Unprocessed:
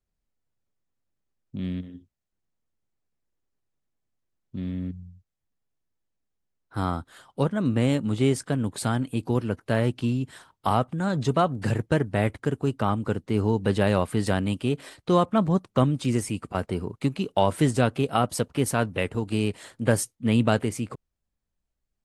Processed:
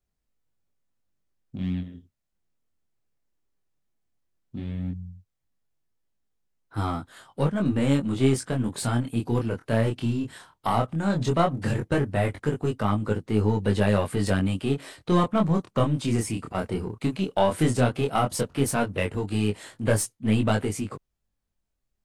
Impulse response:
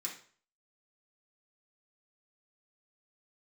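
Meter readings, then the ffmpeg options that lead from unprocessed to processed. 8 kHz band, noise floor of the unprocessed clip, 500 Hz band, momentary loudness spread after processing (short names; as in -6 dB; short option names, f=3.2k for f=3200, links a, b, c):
+1.0 dB, -82 dBFS, -0.5 dB, 10 LU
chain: -filter_complex "[0:a]asplit=2[a][b];[b]aeval=exprs='clip(val(0),-1,0.0335)':c=same,volume=-3.5dB[c];[a][c]amix=inputs=2:normalize=0,flanger=delay=19:depth=7.7:speed=0.15"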